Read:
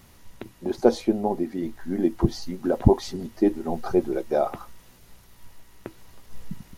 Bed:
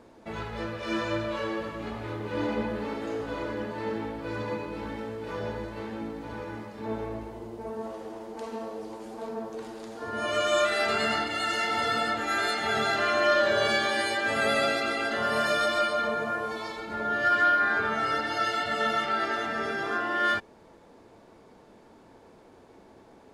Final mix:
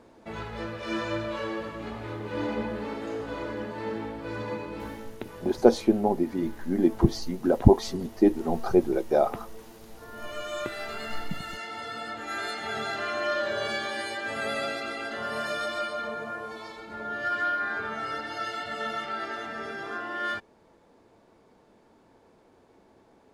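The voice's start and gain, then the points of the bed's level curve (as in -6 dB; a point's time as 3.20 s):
4.80 s, +0.5 dB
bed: 4.86 s -1 dB
5.15 s -10 dB
11.93 s -10 dB
12.36 s -5.5 dB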